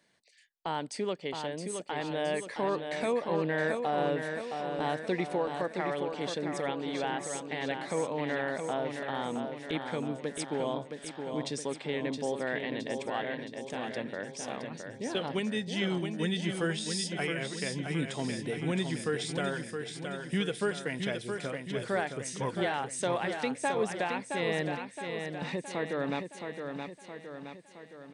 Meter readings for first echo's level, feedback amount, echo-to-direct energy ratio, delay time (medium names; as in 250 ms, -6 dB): -6.0 dB, 55%, -4.5 dB, 668 ms